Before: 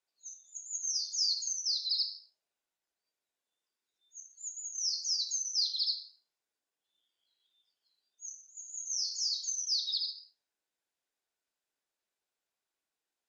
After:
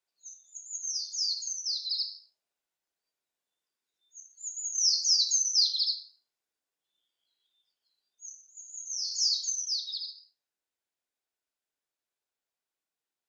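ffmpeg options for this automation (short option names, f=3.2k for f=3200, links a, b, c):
-af "volume=15dB,afade=t=in:st=4.36:d=0.41:silence=0.398107,afade=t=out:st=5.44:d=0.61:silence=0.375837,afade=t=in:st=9.01:d=0.22:silence=0.446684,afade=t=out:st=9.23:d=0.64:silence=0.334965"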